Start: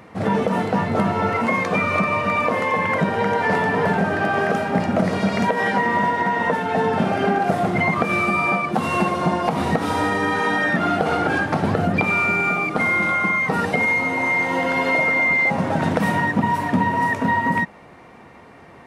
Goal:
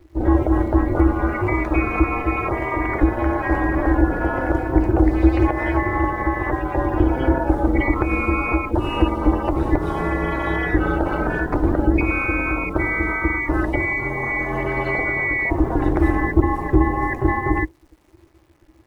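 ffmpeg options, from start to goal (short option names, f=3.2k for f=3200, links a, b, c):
-af "acrusher=bits=8:dc=4:mix=0:aa=0.000001,equalizer=f=190:w=2.2:g=12.5,aeval=exprs='val(0)*sin(2*PI*130*n/s)':c=same,afftdn=nr=14:nf=-31,adynamicequalizer=threshold=0.0112:dfrequency=5300:dqfactor=0.7:tfrequency=5300:tqfactor=0.7:attack=5:release=100:ratio=0.375:range=2.5:mode=boostabove:tftype=highshelf,volume=-1dB"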